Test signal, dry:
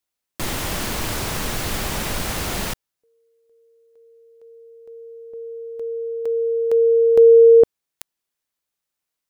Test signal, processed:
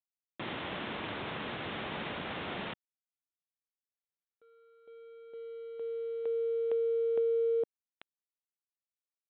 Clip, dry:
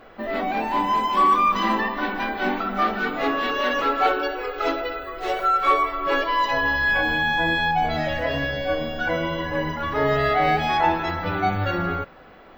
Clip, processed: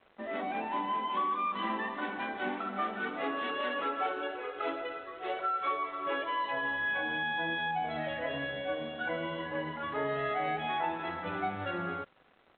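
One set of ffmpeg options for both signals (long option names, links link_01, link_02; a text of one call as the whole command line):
ffmpeg -i in.wav -af "highpass=160,acompressor=threshold=-20dB:ratio=5:attack=38:release=322,aresample=8000,aeval=exprs='sgn(val(0))*max(abs(val(0))-0.00398,0)':channel_layout=same,aresample=44100,volume=-9dB" out.wav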